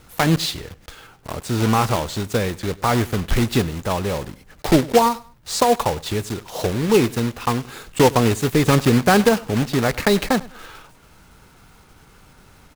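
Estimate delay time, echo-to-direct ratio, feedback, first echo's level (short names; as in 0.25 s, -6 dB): 0.1 s, -21.0 dB, 30%, -21.5 dB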